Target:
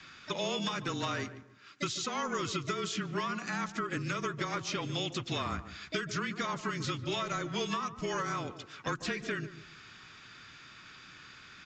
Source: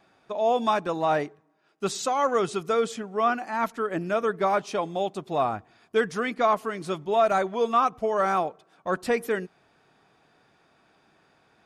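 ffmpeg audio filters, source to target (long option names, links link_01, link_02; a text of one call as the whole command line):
ffmpeg -i in.wav -filter_complex "[0:a]firequalizer=gain_entry='entry(170,0);entry(730,-16);entry(1300,5);entry(2800,9)':delay=0.05:min_phase=1,asplit=3[link_01][link_02][link_03];[link_02]asetrate=37084,aresample=44100,atempo=1.18921,volume=-10dB[link_04];[link_03]asetrate=66075,aresample=44100,atempo=0.66742,volume=-16dB[link_05];[link_01][link_04][link_05]amix=inputs=3:normalize=0,acompressor=threshold=-29dB:ratio=6,afreqshift=-26,acrossover=split=680|5600[link_06][link_07][link_08];[link_06]acompressor=threshold=-42dB:ratio=4[link_09];[link_07]acompressor=threshold=-45dB:ratio=4[link_10];[link_08]acompressor=threshold=-53dB:ratio=4[link_11];[link_09][link_10][link_11]amix=inputs=3:normalize=0,asplit=2[link_12][link_13];[link_13]adelay=147,lowpass=frequency=980:poles=1,volume=-11dB,asplit=2[link_14][link_15];[link_15]adelay=147,lowpass=frequency=980:poles=1,volume=0.28,asplit=2[link_16][link_17];[link_17]adelay=147,lowpass=frequency=980:poles=1,volume=0.28[link_18];[link_14][link_16][link_18]amix=inputs=3:normalize=0[link_19];[link_12][link_19]amix=inputs=2:normalize=0,aresample=16000,aresample=44100,volume=7dB" out.wav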